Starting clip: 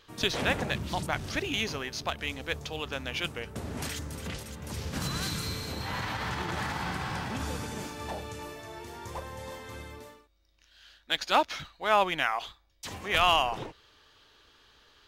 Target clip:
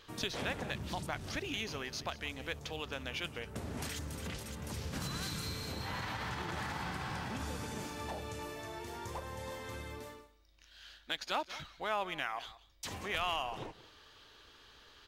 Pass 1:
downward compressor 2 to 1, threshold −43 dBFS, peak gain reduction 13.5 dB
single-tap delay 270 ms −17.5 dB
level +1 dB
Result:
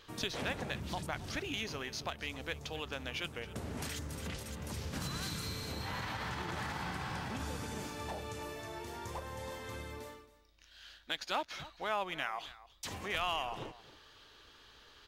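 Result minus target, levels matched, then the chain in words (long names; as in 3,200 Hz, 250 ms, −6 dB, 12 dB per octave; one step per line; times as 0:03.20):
echo 89 ms late
downward compressor 2 to 1, threshold −43 dBFS, peak gain reduction 13.5 dB
single-tap delay 181 ms −17.5 dB
level +1 dB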